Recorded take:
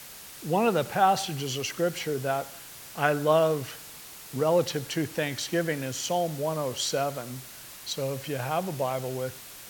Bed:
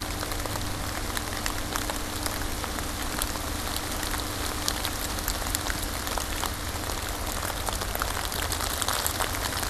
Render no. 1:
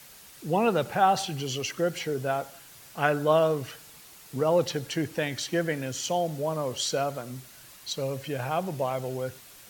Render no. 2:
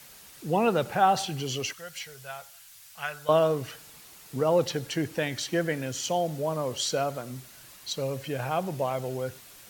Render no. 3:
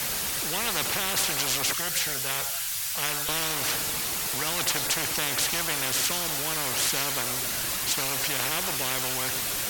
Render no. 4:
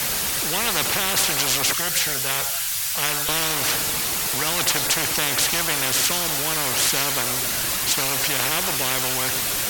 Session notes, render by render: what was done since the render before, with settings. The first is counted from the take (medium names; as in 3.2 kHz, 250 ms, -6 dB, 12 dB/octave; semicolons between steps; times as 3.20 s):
noise reduction 6 dB, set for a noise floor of -45 dBFS
1.73–3.29 s: amplifier tone stack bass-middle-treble 10-0-10
spectrum-flattening compressor 10:1
trim +5.5 dB